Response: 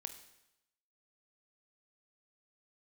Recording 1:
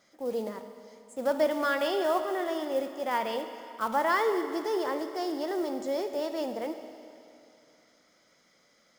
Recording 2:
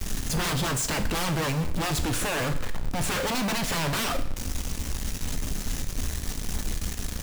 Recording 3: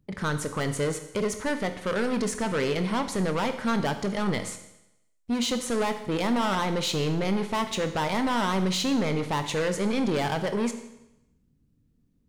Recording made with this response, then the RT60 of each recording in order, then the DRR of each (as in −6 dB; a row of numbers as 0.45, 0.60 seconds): 3; 2.7, 0.65, 0.90 seconds; 7.5, 8.0, 8.5 decibels